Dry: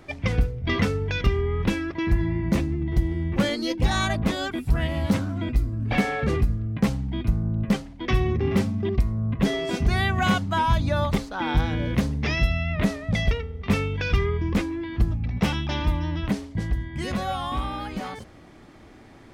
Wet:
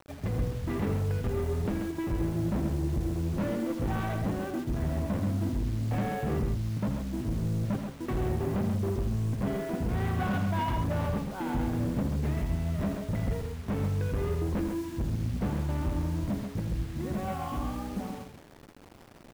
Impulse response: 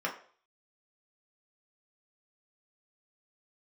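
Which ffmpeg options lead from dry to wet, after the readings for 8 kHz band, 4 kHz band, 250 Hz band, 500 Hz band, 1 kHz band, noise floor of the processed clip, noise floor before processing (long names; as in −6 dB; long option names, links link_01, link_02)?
−7.0 dB, −15.5 dB, −5.0 dB, −5.5 dB, −7.5 dB, −51 dBFS, −48 dBFS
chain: -af "equalizer=frequency=200:width=0.62:gain=5,bandreject=frequency=1300:width=17,aresample=8000,adynamicsmooth=sensitivity=5:basefreq=580,aresample=44100,acrusher=bits=6:mix=0:aa=0.000001,volume=20dB,asoftclip=hard,volume=-20dB,aecho=1:1:81|134:0.376|0.501,volume=-7dB"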